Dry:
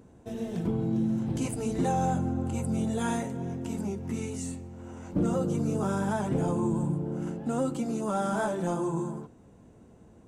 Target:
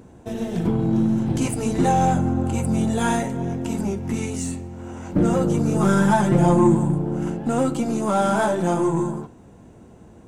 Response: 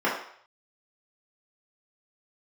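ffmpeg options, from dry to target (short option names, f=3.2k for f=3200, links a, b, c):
-filter_complex "[0:a]aeval=exprs='0.141*(cos(1*acos(clip(val(0)/0.141,-1,1)))-cos(1*PI/2))+0.00398*(cos(8*acos(clip(val(0)/0.141,-1,1)))-cos(8*PI/2))':c=same,asettb=1/sr,asplit=3[a][b][c];[a]atrim=end=5.764[d];[b]atrim=start=5.76:end=6.75,asetpts=PTS-STARTPTS,afade=t=in:d=0.004:c=qsin,afade=t=out:st=0.986:d=0.004:c=qsin,aecho=1:1:5.7:0.84,atrim=end_sample=43659[e];[c]atrim=start=6.746[f];[d][e]acrossfade=d=0.004:c1=hsin:c2=qsin[g];[g][f]acrossfade=d=0.004:c1=qsin:c2=hsin,asplit=2[h][i];[1:a]atrim=start_sample=2205,asetrate=88200,aresample=44100[j];[i][j]afir=irnorm=-1:irlink=0,volume=-20.5dB[k];[h][k]amix=inputs=2:normalize=0,volume=8dB"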